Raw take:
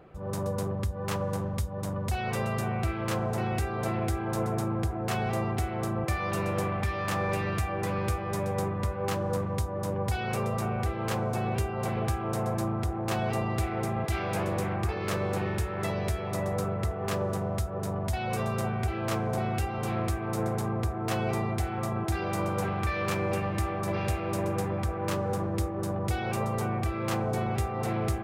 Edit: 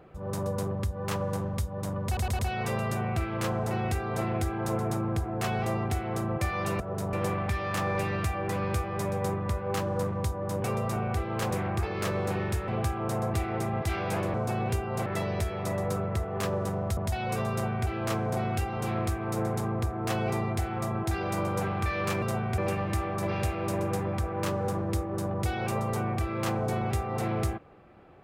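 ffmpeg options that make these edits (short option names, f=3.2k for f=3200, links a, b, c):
-filter_complex "[0:a]asplit=15[a][b][c][d][e][f][g][h][i][j][k][l][m][n][o];[a]atrim=end=2.172[p];[b]atrim=start=2.058:end=2.172[q];[c]atrim=start=2.058:end=2.172[r];[d]atrim=start=2.058:end=6.472[s];[e]atrim=start=17.648:end=17.982[t];[f]atrim=start=6.468:end=9.982[u];[g]atrim=start=10.328:end=11.202[v];[h]atrim=start=14.568:end=15.742[w];[i]atrim=start=11.918:end=12.582[x];[j]atrim=start=13.568:end=14.572[y];[k]atrim=start=11.198:end=11.922[z];[l]atrim=start=15.738:end=17.652[aa];[m]atrim=start=17.978:end=23.232[ab];[n]atrim=start=18.518:end=18.882[ac];[o]atrim=start=23.228[ad];[p][q]acrossfade=d=0.004:c1=hsin:c2=hsin[ae];[ae][r]acrossfade=d=0.004:c1=hsin:c2=hsin[af];[af][s]acrossfade=d=0.004:c1=hsin:c2=hsin[ag];[ag][t]acrossfade=d=0.004:c1=hsin:c2=hsin[ah];[ah][u]acrossfade=d=0.004:c1=hsin:c2=hsin[ai];[ai][v]acrossfade=d=0.004:c1=hsin:c2=hsin[aj];[aj][w]acrossfade=d=0.004:c1=hsin:c2=hsin[ak];[ak][x]acrossfade=d=0.004:c1=hsin:c2=hsin[al];[al][y]acrossfade=d=0.004:c1=hsin:c2=hsin[am];[am][z]acrossfade=d=0.004:c1=hsin:c2=hsin[an];[an][aa]acrossfade=d=0.004:c1=hsin:c2=hsin[ao];[ao][ab]acrossfade=d=0.004:c1=hsin:c2=hsin[ap];[ap][ac]acrossfade=d=0.004:c1=hsin:c2=hsin[aq];[aq][ad]acrossfade=d=0.004:c1=hsin:c2=hsin"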